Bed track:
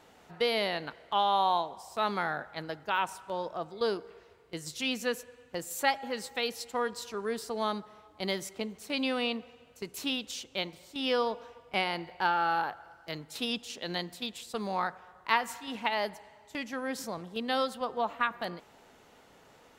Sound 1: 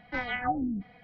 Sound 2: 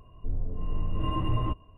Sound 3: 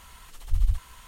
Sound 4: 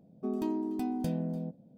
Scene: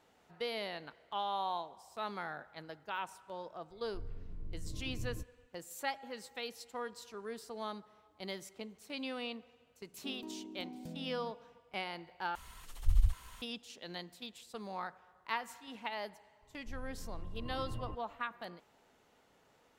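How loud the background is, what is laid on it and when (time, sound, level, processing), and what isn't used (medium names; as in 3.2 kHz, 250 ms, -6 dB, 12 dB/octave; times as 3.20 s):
bed track -10 dB
3.70 s: add 2 -14 dB + boxcar filter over 48 samples
9.81 s: add 4 -14 dB
12.35 s: replace with 3 -4.5 dB
16.42 s: add 2 -15.5 dB
not used: 1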